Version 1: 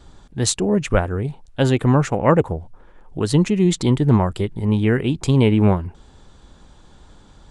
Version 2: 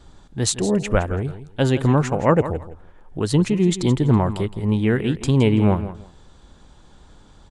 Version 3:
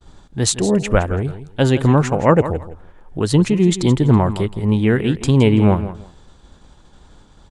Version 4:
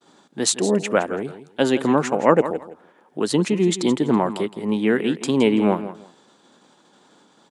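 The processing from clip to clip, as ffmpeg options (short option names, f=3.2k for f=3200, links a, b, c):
-af "aecho=1:1:166|332:0.224|0.0448,volume=-1.5dB"
-af "agate=range=-33dB:threshold=-44dB:ratio=3:detection=peak,volume=3.5dB"
-af "highpass=f=210:w=0.5412,highpass=f=210:w=1.3066,volume=-1.5dB"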